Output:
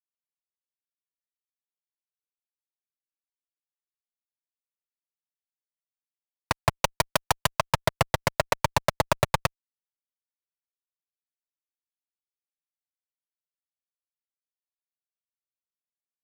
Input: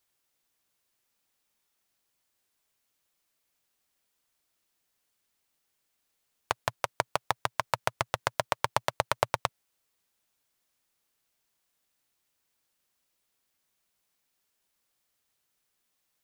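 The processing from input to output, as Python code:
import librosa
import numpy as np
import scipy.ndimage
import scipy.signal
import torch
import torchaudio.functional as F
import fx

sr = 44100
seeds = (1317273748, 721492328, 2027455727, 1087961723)

y = fx.high_shelf(x, sr, hz=2600.0, db=10.0, at=(6.77, 7.51))
y = fx.fuzz(y, sr, gain_db=33.0, gate_db=-42.0)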